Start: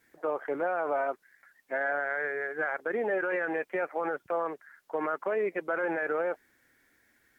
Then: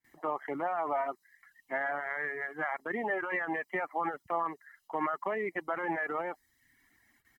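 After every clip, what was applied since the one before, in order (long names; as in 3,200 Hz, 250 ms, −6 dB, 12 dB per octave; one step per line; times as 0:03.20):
comb filter 1 ms, depth 64%
noise gate with hold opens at −56 dBFS
reverb reduction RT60 0.66 s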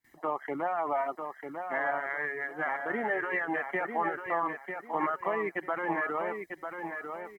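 repeating echo 946 ms, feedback 26%, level −6.5 dB
level +1.5 dB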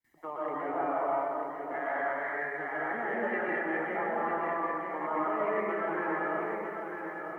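comb and all-pass reverb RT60 2.3 s, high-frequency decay 0.3×, pre-delay 85 ms, DRR −6.5 dB
level −8 dB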